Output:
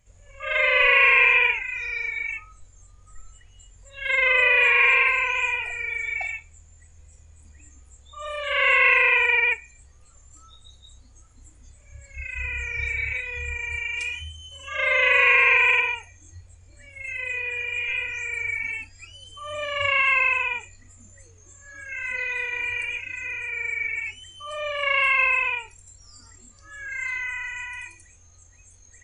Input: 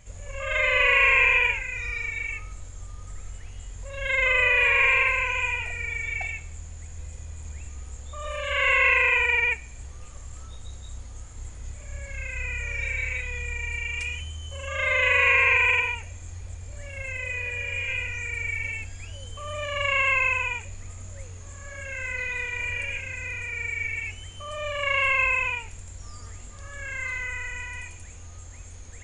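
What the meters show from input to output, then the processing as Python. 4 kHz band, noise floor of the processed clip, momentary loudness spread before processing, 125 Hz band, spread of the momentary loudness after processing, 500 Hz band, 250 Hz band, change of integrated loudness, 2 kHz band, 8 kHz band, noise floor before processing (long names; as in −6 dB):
+2.5 dB, −52 dBFS, 24 LU, −8.0 dB, 19 LU, +1.5 dB, can't be measured, +2.5 dB, +2.5 dB, −4.0 dB, −42 dBFS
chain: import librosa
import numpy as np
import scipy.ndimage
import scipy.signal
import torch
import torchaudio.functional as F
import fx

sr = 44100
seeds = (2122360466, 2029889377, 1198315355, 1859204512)

y = fx.noise_reduce_blind(x, sr, reduce_db=15)
y = F.gain(torch.from_numpy(y), 2.5).numpy()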